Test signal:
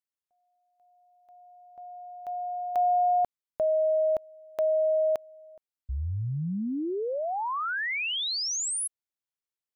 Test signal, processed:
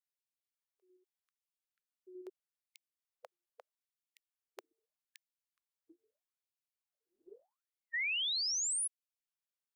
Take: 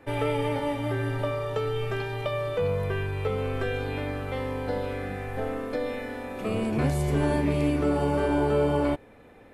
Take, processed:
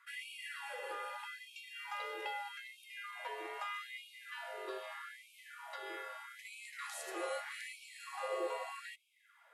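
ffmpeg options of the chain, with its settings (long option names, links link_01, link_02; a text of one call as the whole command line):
ffmpeg -i in.wav -af "afreqshift=-350,afftfilt=real='re*gte(b*sr/1024,340*pow(2200/340,0.5+0.5*sin(2*PI*0.8*pts/sr)))':imag='im*gte(b*sr/1024,340*pow(2200/340,0.5+0.5*sin(2*PI*0.8*pts/sr)))':win_size=1024:overlap=0.75,volume=-4.5dB" out.wav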